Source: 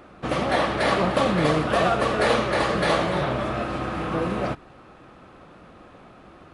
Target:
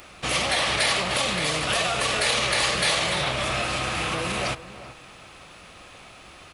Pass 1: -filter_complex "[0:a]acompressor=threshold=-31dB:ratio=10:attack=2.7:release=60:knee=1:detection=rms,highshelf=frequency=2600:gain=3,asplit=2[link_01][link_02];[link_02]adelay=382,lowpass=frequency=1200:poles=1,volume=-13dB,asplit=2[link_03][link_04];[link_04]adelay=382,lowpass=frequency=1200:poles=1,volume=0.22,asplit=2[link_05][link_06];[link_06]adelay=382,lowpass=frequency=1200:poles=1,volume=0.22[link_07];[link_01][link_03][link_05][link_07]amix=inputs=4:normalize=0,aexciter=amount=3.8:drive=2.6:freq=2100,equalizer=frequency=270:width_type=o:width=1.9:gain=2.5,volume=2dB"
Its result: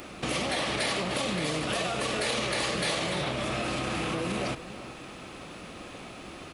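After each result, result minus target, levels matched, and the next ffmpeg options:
downward compressor: peak gain reduction +8 dB; 250 Hz band +8.0 dB
-filter_complex "[0:a]acompressor=threshold=-22dB:ratio=10:attack=2.7:release=60:knee=1:detection=rms,highshelf=frequency=2600:gain=3,asplit=2[link_01][link_02];[link_02]adelay=382,lowpass=frequency=1200:poles=1,volume=-13dB,asplit=2[link_03][link_04];[link_04]adelay=382,lowpass=frequency=1200:poles=1,volume=0.22,asplit=2[link_05][link_06];[link_06]adelay=382,lowpass=frequency=1200:poles=1,volume=0.22[link_07];[link_01][link_03][link_05][link_07]amix=inputs=4:normalize=0,aexciter=amount=3.8:drive=2.6:freq=2100,equalizer=frequency=270:width_type=o:width=1.9:gain=2.5,volume=2dB"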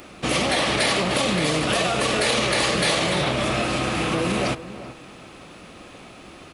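250 Hz band +8.0 dB
-filter_complex "[0:a]acompressor=threshold=-22dB:ratio=10:attack=2.7:release=60:knee=1:detection=rms,highshelf=frequency=2600:gain=3,asplit=2[link_01][link_02];[link_02]adelay=382,lowpass=frequency=1200:poles=1,volume=-13dB,asplit=2[link_03][link_04];[link_04]adelay=382,lowpass=frequency=1200:poles=1,volume=0.22,asplit=2[link_05][link_06];[link_06]adelay=382,lowpass=frequency=1200:poles=1,volume=0.22[link_07];[link_01][link_03][link_05][link_07]amix=inputs=4:normalize=0,aexciter=amount=3.8:drive=2.6:freq=2100,equalizer=frequency=270:width_type=o:width=1.9:gain=-8.5,volume=2dB"

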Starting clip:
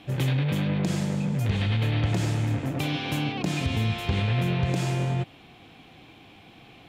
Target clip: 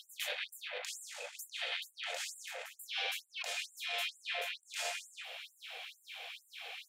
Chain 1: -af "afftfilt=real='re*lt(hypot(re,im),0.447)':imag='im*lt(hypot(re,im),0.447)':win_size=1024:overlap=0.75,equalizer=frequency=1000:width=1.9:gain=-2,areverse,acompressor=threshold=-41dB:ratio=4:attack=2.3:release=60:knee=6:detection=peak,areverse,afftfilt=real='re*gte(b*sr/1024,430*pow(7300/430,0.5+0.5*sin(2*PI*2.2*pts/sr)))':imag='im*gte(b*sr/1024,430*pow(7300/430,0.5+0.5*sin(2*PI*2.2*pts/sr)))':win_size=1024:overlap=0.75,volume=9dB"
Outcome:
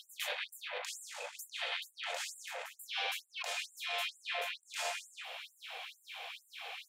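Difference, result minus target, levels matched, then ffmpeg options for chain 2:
1,000 Hz band +3.5 dB
-af "afftfilt=real='re*lt(hypot(re,im),0.447)':imag='im*lt(hypot(re,im),0.447)':win_size=1024:overlap=0.75,equalizer=frequency=1000:width=1.9:gain=-11,areverse,acompressor=threshold=-41dB:ratio=4:attack=2.3:release=60:knee=6:detection=peak,areverse,afftfilt=real='re*gte(b*sr/1024,430*pow(7300/430,0.5+0.5*sin(2*PI*2.2*pts/sr)))':imag='im*gte(b*sr/1024,430*pow(7300/430,0.5+0.5*sin(2*PI*2.2*pts/sr)))':win_size=1024:overlap=0.75,volume=9dB"

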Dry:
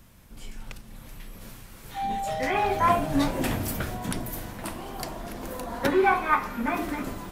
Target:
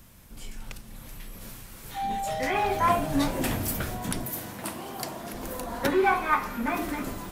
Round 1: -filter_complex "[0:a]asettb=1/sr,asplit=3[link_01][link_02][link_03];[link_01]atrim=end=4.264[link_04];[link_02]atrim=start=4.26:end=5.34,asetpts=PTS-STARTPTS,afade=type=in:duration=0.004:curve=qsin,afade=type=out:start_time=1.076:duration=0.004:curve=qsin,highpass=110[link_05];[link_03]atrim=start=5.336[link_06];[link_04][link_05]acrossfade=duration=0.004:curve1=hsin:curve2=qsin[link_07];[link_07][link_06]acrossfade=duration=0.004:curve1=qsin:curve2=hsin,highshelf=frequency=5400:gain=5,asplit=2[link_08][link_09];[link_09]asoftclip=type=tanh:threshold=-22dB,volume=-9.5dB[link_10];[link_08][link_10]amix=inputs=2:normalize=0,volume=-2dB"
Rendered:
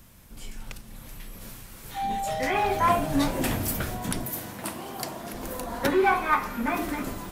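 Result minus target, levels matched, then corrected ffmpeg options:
soft clipping: distortion −7 dB
-filter_complex "[0:a]asettb=1/sr,asplit=3[link_01][link_02][link_03];[link_01]atrim=end=4.264[link_04];[link_02]atrim=start=4.26:end=5.34,asetpts=PTS-STARTPTS,afade=type=in:duration=0.004:curve=qsin,afade=type=out:start_time=1.076:duration=0.004:curve=qsin,highpass=110[link_05];[link_03]atrim=start=5.336[link_06];[link_04][link_05]acrossfade=duration=0.004:curve1=hsin:curve2=qsin[link_07];[link_07][link_06]acrossfade=duration=0.004:curve1=qsin:curve2=hsin,highshelf=frequency=5400:gain=5,asplit=2[link_08][link_09];[link_09]asoftclip=type=tanh:threshold=-34dB,volume=-9.5dB[link_10];[link_08][link_10]amix=inputs=2:normalize=0,volume=-2dB"

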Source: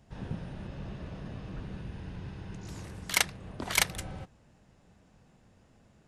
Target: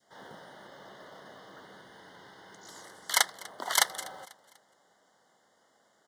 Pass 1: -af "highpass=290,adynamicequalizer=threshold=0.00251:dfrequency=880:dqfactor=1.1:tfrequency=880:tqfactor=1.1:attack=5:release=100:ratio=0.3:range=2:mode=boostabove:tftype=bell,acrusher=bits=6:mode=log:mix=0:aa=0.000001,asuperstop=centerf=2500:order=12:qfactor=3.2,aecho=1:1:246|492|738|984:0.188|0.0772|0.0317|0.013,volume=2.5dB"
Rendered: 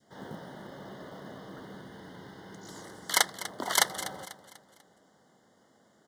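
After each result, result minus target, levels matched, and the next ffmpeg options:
250 Hz band +11.0 dB; echo-to-direct +7 dB
-af "highpass=600,adynamicequalizer=threshold=0.00251:dfrequency=880:dqfactor=1.1:tfrequency=880:tqfactor=1.1:attack=5:release=100:ratio=0.3:range=2:mode=boostabove:tftype=bell,acrusher=bits=6:mode=log:mix=0:aa=0.000001,asuperstop=centerf=2500:order=12:qfactor=3.2,aecho=1:1:246|492|738|984:0.188|0.0772|0.0317|0.013,volume=2.5dB"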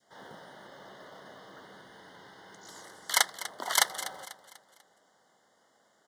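echo-to-direct +7 dB
-af "highpass=600,adynamicequalizer=threshold=0.00251:dfrequency=880:dqfactor=1.1:tfrequency=880:tqfactor=1.1:attack=5:release=100:ratio=0.3:range=2:mode=boostabove:tftype=bell,acrusher=bits=6:mode=log:mix=0:aa=0.000001,asuperstop=centerf=2500:order=12:qfactor=3.2,aecho=1:1:246|492|738:0.0841|0.0345|0.0141,volume=2.5dB"

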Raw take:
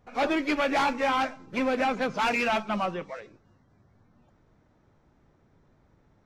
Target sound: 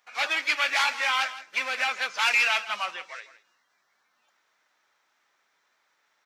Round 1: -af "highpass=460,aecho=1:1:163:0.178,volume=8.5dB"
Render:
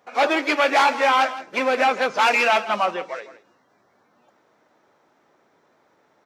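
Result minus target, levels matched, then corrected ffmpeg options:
500 Hz band +13.5 dB
-af "highpass=1800,aecho=1:1:163:0.178,volume=8.5dB"

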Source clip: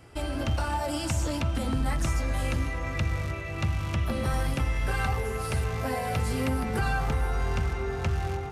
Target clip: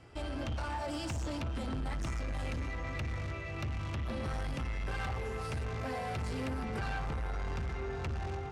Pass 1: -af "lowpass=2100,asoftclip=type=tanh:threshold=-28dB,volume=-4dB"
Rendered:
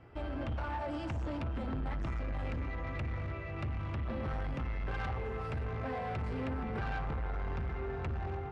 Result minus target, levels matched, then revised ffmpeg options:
8,000 Hz band −16.0 dB
-af "lowpass=6700,asoftclip=type=tanh:threshold=-28dB,volume=-4dB"

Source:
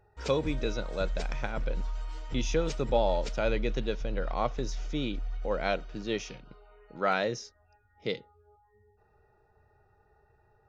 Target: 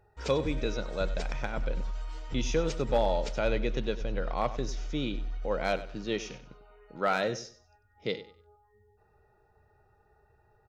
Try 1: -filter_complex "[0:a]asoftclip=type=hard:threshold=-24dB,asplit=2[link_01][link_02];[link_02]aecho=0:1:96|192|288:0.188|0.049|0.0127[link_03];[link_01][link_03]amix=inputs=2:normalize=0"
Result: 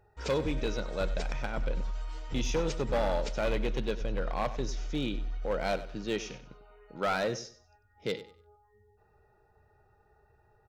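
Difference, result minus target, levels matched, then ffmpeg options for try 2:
hard clipping: distortion +14 dB
-filter_complex "[0:a]asoftclip=type=hard:threshold=-17.5dB,asplit=2[link_01][link_02];[link_02]aecho=0:1:96|192|288:0.188|0.049|0.0127[link_03];[link_01][link_03]amix=inputs=2:normalize=0"

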